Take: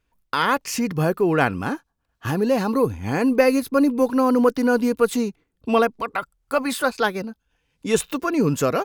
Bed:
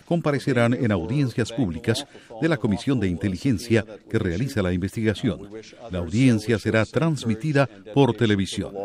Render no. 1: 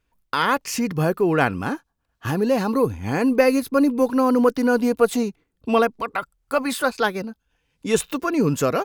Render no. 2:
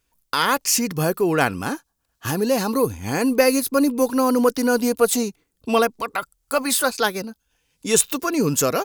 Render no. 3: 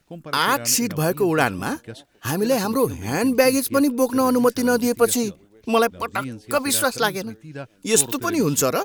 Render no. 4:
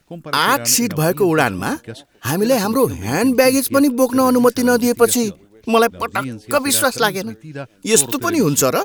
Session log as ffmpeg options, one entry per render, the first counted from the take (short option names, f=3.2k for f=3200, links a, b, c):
-filter_complex "[0:a]asettb=1/sr,asplit=3[a][b][c];[a]atrim=end=4.814[d];[b]atrim=start=4.81:end=5.23,asetpts=PTS-STARTPTS,afade=t=in:d=0.004:c=qsin,afade=t=out:st=0.416:d=0.004:c=qsin,equalizer=f=690:t=o:w=0.41:g=9.5[e];[c]atrim=start=5.226[f];[d][e]acrossfade=d=0.004:c1=hsin:c2=qsin[g];[g][f]acrossfade=d=0.004:c1=qsin:c2=hsin"
-af "bass=f=250:g=-2,treble=f=4k:g=12"
-filter_complex "[1:a]volume=-15dB[a];[0:a][a]amix=inputs=2:normalize=0"
-af "volume=4.5dB,alimiter=limit=-1dB:level=0:latency=1"